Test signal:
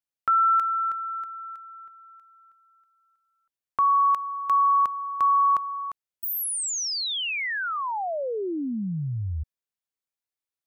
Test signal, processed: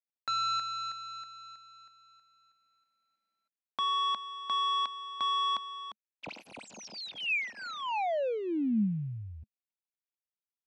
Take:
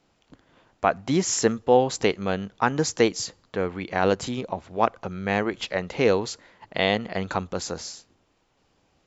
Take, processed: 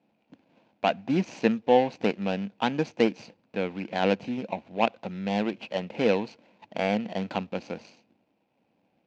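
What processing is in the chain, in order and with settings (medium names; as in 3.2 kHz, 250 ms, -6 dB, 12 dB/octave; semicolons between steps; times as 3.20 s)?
median filter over 25 samples; cabinet simulation 200–5600 Hz, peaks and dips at 210 Hz +6 dB, 400 Hz -7 dB, 1.2 kHz -10 dB, 2.5 kHz +9 dB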